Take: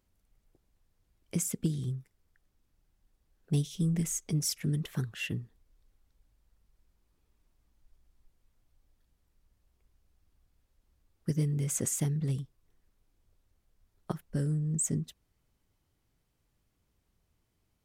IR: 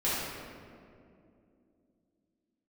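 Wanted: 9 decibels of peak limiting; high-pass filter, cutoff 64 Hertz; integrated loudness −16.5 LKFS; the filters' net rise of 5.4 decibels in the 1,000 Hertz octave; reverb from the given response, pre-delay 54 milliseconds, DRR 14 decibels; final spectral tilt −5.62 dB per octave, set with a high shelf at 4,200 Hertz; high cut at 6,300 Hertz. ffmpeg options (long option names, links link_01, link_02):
-filter_complex "[0:a]highpass=64,lowpass=6300,equalizer=frequency=1000:width_type=o:gain=7.5,highshelf=frequency=4200:gain=-4.5,alimiter=level_in=3dB:limit=-24dB:level=0:latency=1,volume=-3dB,asplit=2[link_01][link_02];[1:a]atrim=start_sample=2205,adelay=54[link_03];[link_02][link_03]afir=irnorm=-1:irlink=0,volume=-24.5dB[link_04];[link_01][link_04]amix=inputs=2:normalize=0,volume=20dB"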